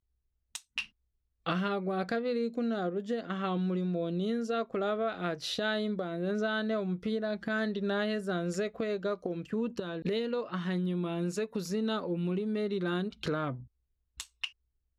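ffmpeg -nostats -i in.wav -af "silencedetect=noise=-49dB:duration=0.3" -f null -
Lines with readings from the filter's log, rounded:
silence_start: 0.00
silence_end: 0.55 | silence_duration: 0.55
silence_start: 0.86
silence_end: 1.46 | silence_duration: 0.60
silence_start: 13.65
silence_end: 14.19 | silence_duration: 0.53
silence_start: 14.50
silence_end: 14.98 | silence_duration: 0.48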